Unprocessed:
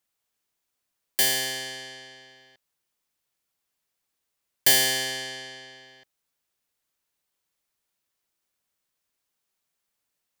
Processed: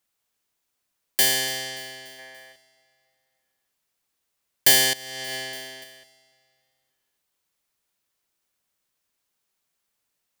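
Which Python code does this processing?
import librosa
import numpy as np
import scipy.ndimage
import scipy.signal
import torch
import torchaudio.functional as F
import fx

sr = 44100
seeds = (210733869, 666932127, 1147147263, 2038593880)

y = fx.spec_box(x, sr, start_s=2.19, length_s=0.33, low_hz=410.0, high_hz=2400.0, gain_db=7)
y = fx.echo_feedback(y, sr, ms=289, feedback_pct=52, wet_db=-19.0)
y = fx.over_compress(y, sr, threshold_db=-37.0, ratio=-1.0, at=(4.93, 5.84))
y = y * librosa.db_to_amplitude(2.5)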